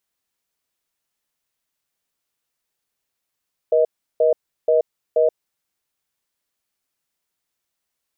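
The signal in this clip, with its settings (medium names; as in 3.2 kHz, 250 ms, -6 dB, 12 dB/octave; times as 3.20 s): cadence 479 Hz, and 628 Hz, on 0.13 s, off 0.35 s, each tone -15.5 dBFS 1.89 s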